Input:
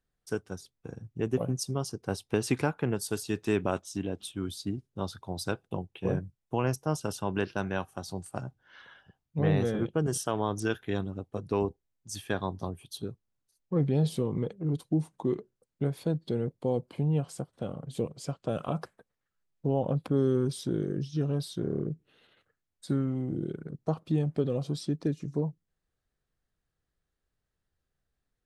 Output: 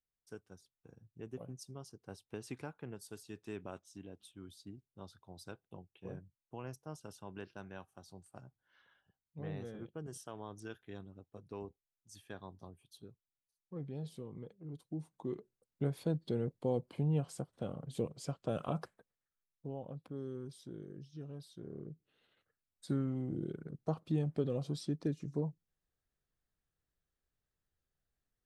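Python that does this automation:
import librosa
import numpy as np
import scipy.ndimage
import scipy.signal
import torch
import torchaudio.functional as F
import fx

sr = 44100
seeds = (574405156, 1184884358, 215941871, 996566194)

y = fx.gain(x, sr, db=fx.line((14.68, -17.0), (15.86, -5.0), (18.79, -5.0), (19.9, -17.5), (21.5, -17.5), (22.87, -6.0)))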